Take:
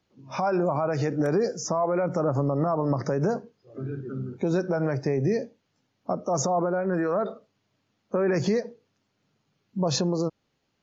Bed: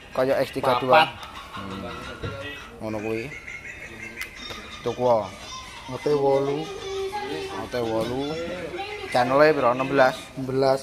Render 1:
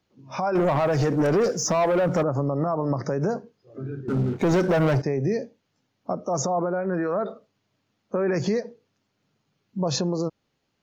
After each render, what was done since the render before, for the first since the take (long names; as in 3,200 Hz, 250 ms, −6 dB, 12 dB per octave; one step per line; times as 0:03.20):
0:00.55–0:02.23: leveller curve on the samples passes 2
0:04.08–0:05.02: leveller curve on the samples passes 3
0:06.65–0:07.28: low-pass filter 4,900 Hz 24 dB per octave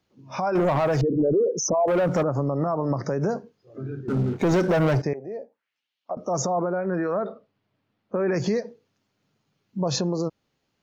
0:01.01–0:01.88: spectral envelope exaggerated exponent 3
0:05.13–0:06.17: envelope filter 690–3,400 Hz, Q 2.3, down, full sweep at −26 dBFS
0:07.19–0:08.20: high-frequency loss of the air 210 metres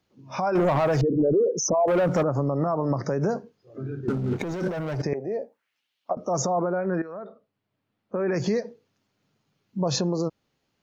0:04.03–0:06.13: compressor whose output falls as the input rises −27 dBFS
0:07.02–0:08.63: fade in, from −14 dB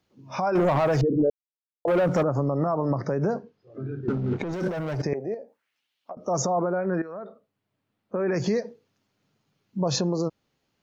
0:01.30–0:01.85: silence
0:02.90–0:04.53: high-frequency loss of the air 120 metres
0:05.34–0:06.28: downward compressor 2 to 1, threshold −42 dBFS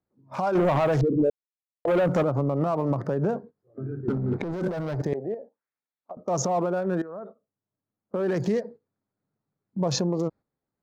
adaptive Wiener filter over 15 samples
noise gate −43 dBFS, range −10 dB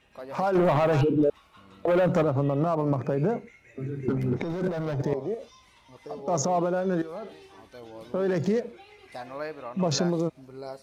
mix in bed −18.5 dB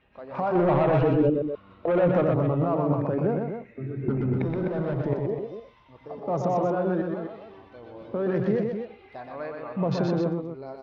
high-frequency loss of the air 340 metres
loudspeakers that aren't time-aligned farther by 42 metres −4 dB, 87 metres −8 dB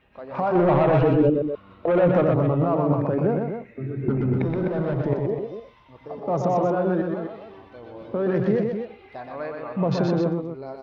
level +3 dB